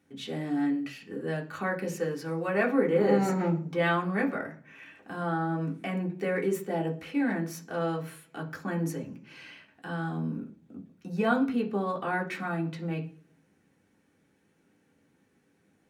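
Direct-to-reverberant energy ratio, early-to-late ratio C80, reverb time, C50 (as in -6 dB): -1.0 dB, 18.0 dB, 0.45 s, 13.0 dB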